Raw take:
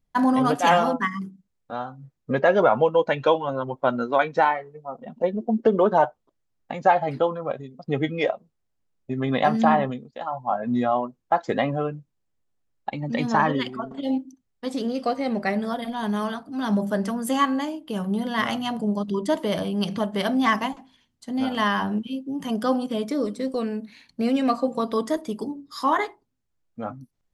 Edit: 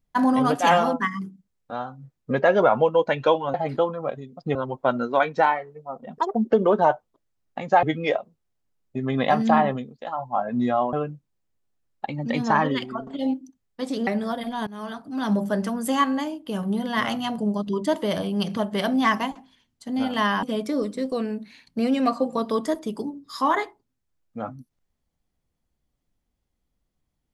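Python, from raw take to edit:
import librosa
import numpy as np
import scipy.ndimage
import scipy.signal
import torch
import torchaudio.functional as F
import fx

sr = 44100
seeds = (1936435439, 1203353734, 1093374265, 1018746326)

y = fx.edit(x, sr, fx.speed_span(start_s=5.17, length_s=0.31, speed=1.84),
    fx.move(start_s=6.96, length_s=1.01, to_s=3.54),
    fx.cut(start_s=11.07, length_s=0.7),
    fx.cut(start_s=14.91, length_s=0.57),
    fx.fade_in_from(start_s=16.08, length_s=0.39, floor_db=-23.5),
    fx.cut(start_s=21.84, length_s=1.01), tone=tone)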